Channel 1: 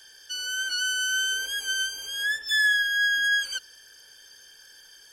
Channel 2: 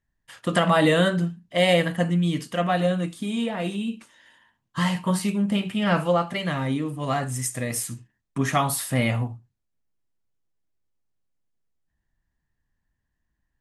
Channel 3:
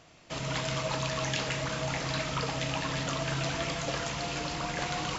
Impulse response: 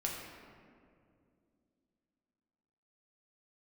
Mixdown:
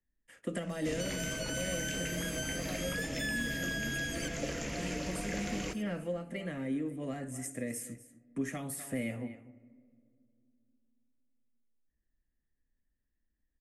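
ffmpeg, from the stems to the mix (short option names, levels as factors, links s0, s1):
-filter_complex "[0:a]adelay=700,volume=0.75,asplit=2[s0][s1];[s1]volume=0.168[s2];[1:a]volume=0.2,asplit=3[s3][s4][s5];[s4]volume=0.0708[s6];[s5]volume=0.126[s7];[2:a]highshelf=f=8800:g=-9,adelay=550,volume=1,asplit=2[s8][s9];[s9]volume=0.141[s10];[3:a]atrim=start_sample=2205[s11];[s6][s10]amix=inputs=2:normalize=0[s12];[s12][s11]afir=irnorm=-1:irlink=0[s13];[s2][s7]amix=inputs=2:normalize=0,aecho=0:1:244:1[s14];[s0][s3][s8][s13][s14]amix=inputs=5:normalize=0,lowshelf=f=74:g=11.5,acrossover=split=120|260|3400[s15][s16][s17][s18];[s15]acompressor=threshold=0.00708:ratio=4[s19];[s16]acompressor=threshold=0.00501:ratio=4[s20];[s17]acompressor=threshold=0.00708:ratio=4[s21];[s18]acompressor=threshold=0.0112:ratio=4[s22];[s19][s20][s21][s22]amix=inputs=4:normalize=0,equalizer=f=125:t=o:w=1:g=-6,equalizer=f=250:t=o:w=1:g=9,equalizer=f=500:t=o:w=1:g=9,equalizer=f=1000:t=o:w=1:g=-10,equalizer=f=2000:t=o:w=1:g=8,equalizer=f=4000:t=o:w=1:g=-10,equalizer=f=8000:t=o:w=1:g=4"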